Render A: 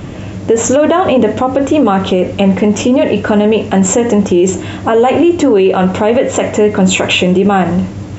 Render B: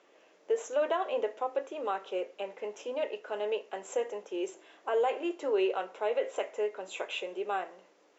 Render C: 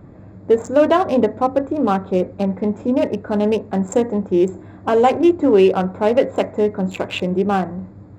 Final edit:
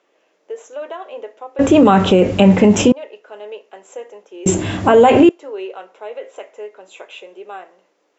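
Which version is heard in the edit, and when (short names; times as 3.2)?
B
1.59–2.92 from A
4.46–5.29 from A
not used: C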